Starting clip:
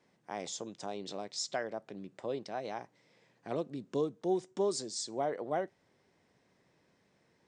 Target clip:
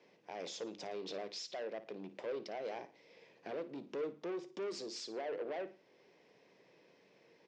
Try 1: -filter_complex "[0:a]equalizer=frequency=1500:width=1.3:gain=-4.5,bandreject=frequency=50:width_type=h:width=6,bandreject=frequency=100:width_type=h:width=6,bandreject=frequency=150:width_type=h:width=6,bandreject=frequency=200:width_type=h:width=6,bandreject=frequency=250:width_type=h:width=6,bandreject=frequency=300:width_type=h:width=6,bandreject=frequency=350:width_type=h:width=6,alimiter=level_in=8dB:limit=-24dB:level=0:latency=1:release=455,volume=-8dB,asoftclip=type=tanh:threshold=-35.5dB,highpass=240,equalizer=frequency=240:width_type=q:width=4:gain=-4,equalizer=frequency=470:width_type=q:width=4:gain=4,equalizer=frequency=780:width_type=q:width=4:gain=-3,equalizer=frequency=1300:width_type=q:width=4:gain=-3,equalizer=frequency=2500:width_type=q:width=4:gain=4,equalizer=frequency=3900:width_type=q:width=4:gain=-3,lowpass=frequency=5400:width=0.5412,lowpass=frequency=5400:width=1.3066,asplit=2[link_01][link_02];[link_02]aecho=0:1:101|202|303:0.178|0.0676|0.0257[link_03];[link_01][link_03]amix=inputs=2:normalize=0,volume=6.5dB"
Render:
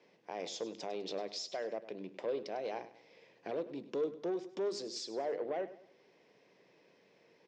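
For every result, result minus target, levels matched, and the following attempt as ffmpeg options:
echo 45 ms late; soft clipping: distortion −9 dB
-filter_complex "[0:a]equalizer=frequency=1500:width=1.3:gain=-4.5,bandreject=frequency=50:width_type=h:width=6,bandreject=frequency=100:width_type=h:width=6,bandreject=frequency=150:width_type=h:width=6,bandreject=frequency=200:width_type=h:width=6,bandreject=frequency=250:width_type=h:width=6,bandreject=frequency=300:width_type=h:width=6,bandreject=frequency=350:width_type=h:width=6,alimiter=level_in=8dB:limit=-24dB:level=0:latency=1:release=455,volume=-8dB,asoftclip=type=tanh:threshold=-35.5dB,highpass=240,equalizer=frequency=240:width_type=q:width=4:gain=-4,equalizer=frequency=470:width_type=q:width=4:gain=4,equalizer=frequency=780:width_type=q:width=4:gain=-3,equalizer=frequency=1300:width_type=q:width=4:gain=-3,equalizer=frequency=2500:width_type=q:width=4:gain=4,equalizer=frequency=3900:width_type=q:width=4:gain=-3,lowpass=frequency=5400:width=0.5412,lowpass=frequency=5400:width=1.3066,asplit=2[link_01][link_02];[link_02]aecho=0:1:56|112|168:0.178|0.0676|0.0257[link_03];[link_01][link_03]amix=inputs=2:normalize=0,volume=6.5dB"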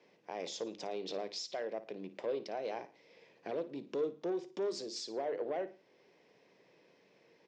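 soft clipping: distortion −9 dB
-filter_complex "[0:a]equalizer=frequency=1500:width=1.3:gain=-4.5,bandreject=frequency=50:width_type=h:width=6,bandreject=frequency=100:width_type=h:width=6,bandreject=frequency=150:width_type=h:width=6,bandreject=frequency=200:width_type=h:width=6,bandreject=frequency=250:width_type=h:width=6,bandreject=frequency=300:width_type=h:width=6,bandreject=frequency=350:width_type=h:width=6,alimiter=level_in=8dB:limit=-24dB:level=0:latency=1:release=455,volume=-8dB,asoftclip=type=tanh:threshold=-43.5dB,highpass=240,equalizer=frequency=240:width_type=q:width=4:gain=-4,equalizer=frequency=470:width_type=q:width=4:gain=4,equalizer=frequency=780:width_type=q:width=4:gain=-3,equalizer=frequency=1300:width_type=q:width=4:gain=-3,equalizer=frequency=2500:width_type=q:width=4:gain=4,equalizer=frequency=3900:width_type=q:width=4:gain=-3,lowpass=frequency=5400:width=0.5412,lowpass=frequency=5400:width=1.3066,asplit=2[link_01][link_02];[link_02]aecho=0:1:56|112|168:0.178|0.0676|0.0257[link_03];[link_01][link_03]amix=inputs=2:normalize=0,volume=6.5dB"

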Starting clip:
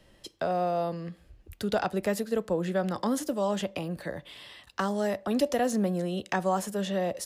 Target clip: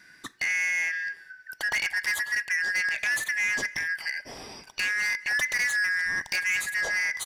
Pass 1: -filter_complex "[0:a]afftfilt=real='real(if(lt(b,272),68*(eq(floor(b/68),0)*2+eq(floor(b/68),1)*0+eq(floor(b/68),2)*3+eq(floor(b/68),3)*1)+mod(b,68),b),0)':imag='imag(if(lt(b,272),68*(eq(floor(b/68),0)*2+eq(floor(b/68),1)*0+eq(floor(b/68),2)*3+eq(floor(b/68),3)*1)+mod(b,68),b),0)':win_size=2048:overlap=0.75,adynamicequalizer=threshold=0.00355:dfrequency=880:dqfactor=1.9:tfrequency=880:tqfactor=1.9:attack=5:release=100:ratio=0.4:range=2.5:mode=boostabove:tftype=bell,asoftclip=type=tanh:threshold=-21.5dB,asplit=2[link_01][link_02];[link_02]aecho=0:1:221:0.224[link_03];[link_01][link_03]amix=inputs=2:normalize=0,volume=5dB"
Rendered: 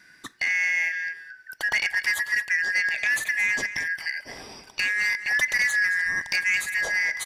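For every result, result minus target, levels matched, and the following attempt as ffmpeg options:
echo-to-direct +9.5 dB; soft clipping: distortion −6 dB
-filter_complex "[0:a]afftfilt=real='real(if(lt(b,272),68*(eq(floor(b/68),0)*2+eq(floor(b/68),1)*0+eq(floor(b/68),2)*3+eq(floor(b/68),3)*1)+mod(b,68),b),0)':imag='imag(if(lt(b,272),68*(eq(floor(b/68),0)*2+eq(floor(b/68),1)*0+eq(floor(b/68),2)*3+eq(floor(b/68),3)*1)+mod(b,68),b),0)':win_size=2048:overlap=0.75,adynamicequalizer=threshold=0.00355:dfrequency=880:dqfactor=1.9:tfrequency=880:tqfactor=1.9:attack=5:release=100:ratio=0.4:range=2.5:mode=boostabove:tftype=bell,asoftclip=type=tanh:threshold=-21.5dB,asplit=2[link_01][link_02];[link_02]aecho=0:1:221:0.075[link_03];[link_01][link_03]amix=inputs=2:normalize=0,volume=5dB"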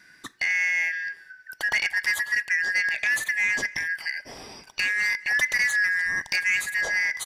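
soft clipping: distortion −6 dB
-filter_complex "[0:a]afftfilt=real='real(if(lt(b,272),68*(eq(floor(b/68),0)*2+eq(floor(b/68),1)*0+eq(floor(b/68),2)*3+eq(floor(b/68),3)*1)+mod(b,68),b),0)':imag='imag(if(lt(b,272),68*(eq(floor(b/68),0)*2+eq(floor(b/68),1)*0+eq(floor(b/68),2)*3+eq(floor(b/68),3)*1)+mod(b,68),b),0)':win_size=2048:overlap=0.75,adynamicequalizer=threshold=0.00355:dfrequency=880:dqfactor=1.9:tfrequency=880:tqfactor=1.9:attack=5:release=100:ratio=0.4:range=2.5:mode=boostabove:tftype=bell,asoftclip=type=tanh:threshold=-27.5dB,asplit=2[link_01][link_02];[link_02]aecho=0:1:221:0.075[link_03];[link_01][link_03]amix=inputs=2:normalize=0,volume=5dB"

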